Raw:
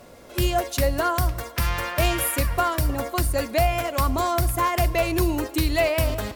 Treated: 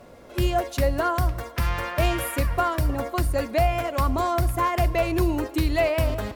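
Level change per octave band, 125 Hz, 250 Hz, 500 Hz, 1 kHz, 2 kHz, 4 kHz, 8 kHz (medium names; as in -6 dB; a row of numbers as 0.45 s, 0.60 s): 0.0 dB, 0.0 dB, -0.5 dB, -0.5 dB, -2.5 dB, -4.5 dB, -7.5 dB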